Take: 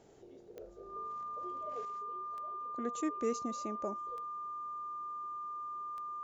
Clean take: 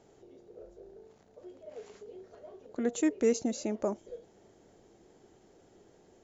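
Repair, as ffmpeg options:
-af "adeclick=t=4,bandreject=f=1200:w=30,asetnsamples=n=441:p=0,asendcmd='1.85 volume volume 8dB',volume=1"

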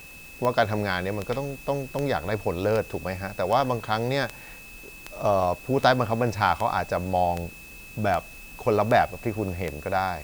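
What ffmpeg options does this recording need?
-af "adeclick=t=4,bandreject=f=2600:w=30,afftdn=nr=26:nf=-44"

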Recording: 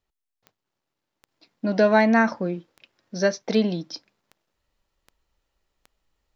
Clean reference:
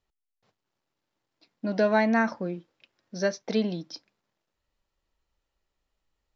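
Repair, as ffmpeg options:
-af "adeclick=t=4,asetnsamples=n=441:p=0,asendcmd='1.28 volume volume -5dB',volume=1"

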